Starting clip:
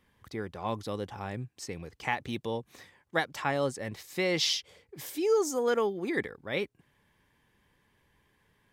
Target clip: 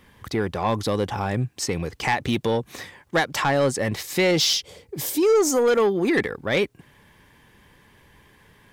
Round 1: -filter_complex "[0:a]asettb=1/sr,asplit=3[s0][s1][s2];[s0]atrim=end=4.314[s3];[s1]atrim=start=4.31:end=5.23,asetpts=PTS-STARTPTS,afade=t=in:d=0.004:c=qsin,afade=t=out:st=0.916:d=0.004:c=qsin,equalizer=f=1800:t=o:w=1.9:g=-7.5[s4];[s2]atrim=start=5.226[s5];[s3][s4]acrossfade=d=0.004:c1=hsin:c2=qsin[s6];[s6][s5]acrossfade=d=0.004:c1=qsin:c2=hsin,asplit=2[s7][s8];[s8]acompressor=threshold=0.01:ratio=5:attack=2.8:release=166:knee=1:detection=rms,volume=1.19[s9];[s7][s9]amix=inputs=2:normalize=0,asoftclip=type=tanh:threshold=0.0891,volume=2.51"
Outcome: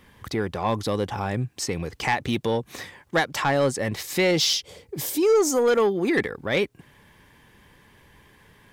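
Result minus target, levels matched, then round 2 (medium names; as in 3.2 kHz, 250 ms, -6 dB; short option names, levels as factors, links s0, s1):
compression: peak gain reduction +6.5 dB
-filter_complex "[0:a]asettb=1/sr,asplit=3[s0][s1][s2];[s0]atrim=end=4.314[s3];[s1]atrim=start=4.31:end=5.23,asetpts=PTS-STARTPTS,afade=t=in:d=0.004:c=qsin,afade=t=out:st=0.916:d=0.004:c=qsin,equalizer=f=1800:t=o:w=1.9:g=-7.5[s4];[s2]atrim=start=5.226[s5];[s3][s4]acrossfade=d=0.004:c1=hsin:c2=qsin[s6];[s6][s5]acrossfade=d=0.004:c1=qsin:c2=hsin,asplit=2[s7][s8];[s8]acompressor=threshold=0.0251:ratio=5:attack=2.8:release=166:knee=1:detection=rms,volume=1.19[s9];[s7][s9]amix=inputs=2:normalize=0,asoftclip=type=tanh:threshold=0.0891,volume=2.51"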